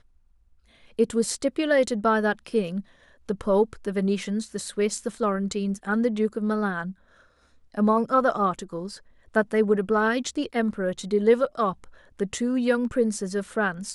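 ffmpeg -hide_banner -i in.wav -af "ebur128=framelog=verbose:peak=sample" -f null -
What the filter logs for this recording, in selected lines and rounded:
Integrated loudness:
  I:         -25.1 LUFS
  Threshold: -35.8 LUFS
Loudness range:
  LRA:         2.6 LU
  Threshold: -45.7 LUFS
  LRA low:   -27.2 LUFS
  LRA high:  -24.6 LUFS
Sample peak:
  Peak:       -8.4 dBFS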